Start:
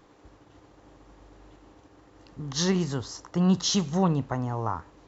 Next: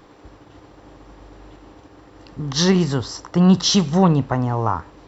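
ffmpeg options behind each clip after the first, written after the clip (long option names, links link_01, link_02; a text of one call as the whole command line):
ffmpeg -i in.wav -af "bandreject=frequency=6600:width=6.5,acontrast=49,volume=3dB" out.wav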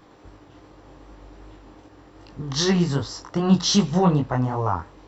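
ffmpeg -i in.wav -af "flanger=delay=19:depth=4.3:speed=2.6" out.wav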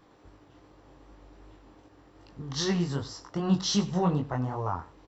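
ffmpeg -i in.wav -af "aecho=1:1:97:0.112,volume=-7.5dB" out.wav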